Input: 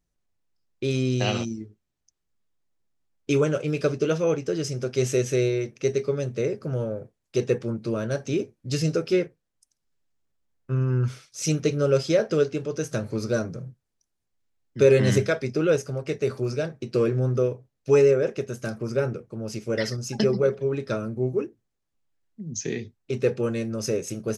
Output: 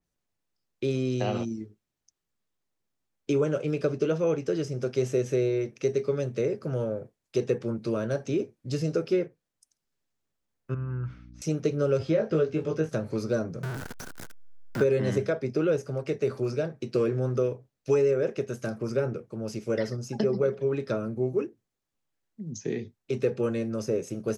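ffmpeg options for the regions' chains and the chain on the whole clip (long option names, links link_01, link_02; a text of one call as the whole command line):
ffmpeg -i in.wav -filter_complex "[0:a]asettb=1/sr,asplit=3[link_01][link_02][link_03];[link_01]atrim=end=10.744[link_04];[link_02]atrim=start=10.74:end=11.42,asetpts=PTS-STARTPTS,afade=type=in:duration=0.004:curve=qsin,afade=type=out:start_time=0.676:duration=0.004:curve=qsin,lowpass=1400,equalizer=frequency=360:width_type=o:width=2.7:gain=-13,aeval=exprs='val(0)+0.00708*(sin(2*PI*60*n/s)+sin(2*PI*2*60*n/s)/2+sin(2*PI*3*60*n/s)/3+sin(2*PI*4*60*n/s)/4+sin(2*PI*5*60*n/s)/5)':channel_layout=same[link_05];[link_03]atrim=start=11.416[link_06];[link_04][link_05]acrossfade=duration=0.004:curve1=hsin:curve2=qsin[link_07];[link_07][link_06]acrossfade=duration=0.004:curve1=qsin:curve2=hsin,asettb=1/sr,asplit=3[link_08][link_09][link_10];[link_08]atrim=end=11.994[link_11];[link_09]atrim=start=11.99:end=12.89,asetpts=PTS-STARTPTS,afade=type=in:duration=0.004:curve=qsin,afade=type=out:start_time=0.896:duration=0.004:curve=qsin,acrossover=split=3300[link_12][link_13];[link_13]acompressor=threshold=-51dB:ratio=4:attack=1:release=60[link_14];[link_12][link_14]amix=inputs=2:normalize=0,equalizer=frequency=84:width=1.6:gain=13,asplit=2[link_15][link_16];[link_16]adelay=19,volume=-3.5dB[link_17];[link_15][link_17]amix=inputs=2:normalize=0,atrim=end_sample=39690[link_18];[link_10]atrim=start=12.886[link_19];[link_11][link_18]acrossfade=duration=0.004:curve1=hsin:curve2=qsin[link_20];[link_20][link_19]acrossfade=duration=0.004:curve1=qsin:curve2=hsin,asettb=1/sr,asplit=3[link_21][link_22][link_23];[link_21]atrim=end=13.634[link_24];[link_22]atrim=start=13.63:end=14.84,asetpts=PTS-STARTPTS,afade=type=in:duration=0.004:curve=qsin,afade=type=out:start_time=1.206:duration=0.004:curve=qsin,aeval=exprs='val(0)+0.5*0.0501*sgn(val(0))':channel_layout=same,equalizer=frequency=1500:width=4.8:gain=13.5[link_25];[link_23]atrim=start=14.836[link_26];[link_24][link_25]acrossfade=duration=0.004:curve1=hsin:curve2=qsin[link_27];[link_27][link_26]acrossfade=duration=0.004:curve1=qsin:curve2=hsin,lowshelf=frequency=80:gain=-9,acrossover=split=360|1200[link_28][link_29][link_30];[link_28]acompressor=threshold=-27dB:ratio=4[link_31];[link_29]acompressor=threshold=-25dB:ratio=4[link_32];[link_30]acompressor=threshold=-43dB:ratio=4[link_33];[link_31][link_32][link_33]amix=inputs=3:normalize=0,adynamicequalizer=threshold=0.00398:dfrequency=4000:dqfactor=0.7:tfrequency=4000:tqfactor=0.7:attack=5:release=100:ratio=0.375:range=2:mode=cutabove:tftype=highshelf" out.wav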